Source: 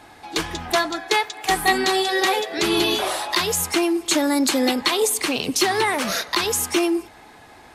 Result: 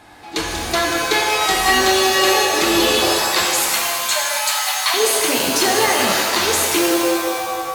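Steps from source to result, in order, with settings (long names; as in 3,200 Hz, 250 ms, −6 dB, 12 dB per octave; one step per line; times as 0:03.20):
0:03.43–0:04.94: linear-phase brick-wall high-pass 580 Hz
reverb with rising layers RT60 2.1 s, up +7 semitones, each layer −2 dB, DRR −0.5 dB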